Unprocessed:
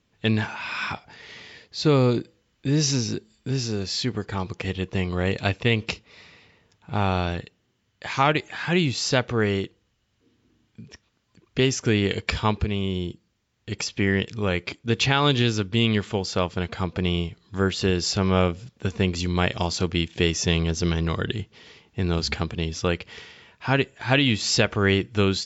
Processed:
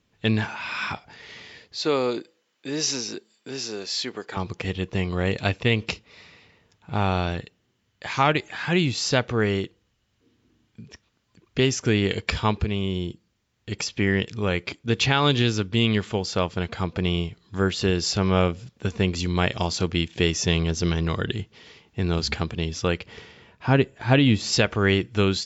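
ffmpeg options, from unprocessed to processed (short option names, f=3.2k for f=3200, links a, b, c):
-filter_complex "[0:a]asettb=1/sr,asplit=3[a][b][c];[a]atrim=end=1.774[d];[b]atrim=start=1.77:end=4.37,asetpts=PTS-STARTPTS,afade=t=in:d=0.004:c=qsin,afade=t=out:st=2.596:d=0.004:c=qsin,highpass=380[e];[c]atrim=start=4.366[f];[d][e]acrossfade=d=0.004:c1=hsin:c2=qsin[g];[g][f]acrossfade=d=0.004:c1=qsin:c2=hsin,asettb=1/sr,asplit=3[h][i][j];[h]atrim=end=23.064[k];[i]atrim=start=23.06:end=24.53,asetpts=PTS-STARTPTS,afade=t=in:d=0.004:c=qsin,afade=t=out:st=1.466:d=0.004:c=qsin,tiltshelf=f=970:g=4.5[l];[j]atrim=start=24.526[m];[k][l]acrossfade=d=0.004:c1=hsin:c2=qsin[n];[n][m]acrossfade=d=0.004:c1=qsin:c2=hsin"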